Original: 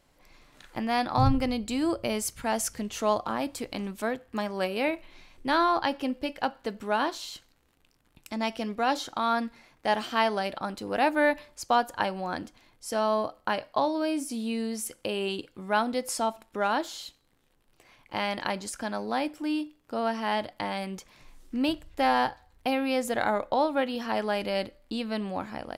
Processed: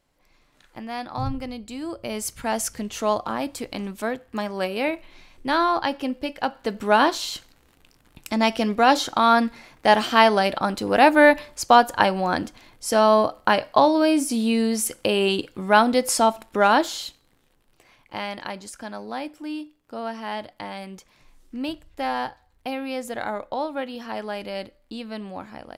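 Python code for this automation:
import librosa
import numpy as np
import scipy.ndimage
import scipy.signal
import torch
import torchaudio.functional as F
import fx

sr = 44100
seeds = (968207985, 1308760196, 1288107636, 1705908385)

y = fx.gain(x, sr, db=fx.line((1.9, -5.0), (2.31, 3.0), (6.41, 3.0), (6.93, 9.5), (16.81, 9.5), (18.46, -2.5)))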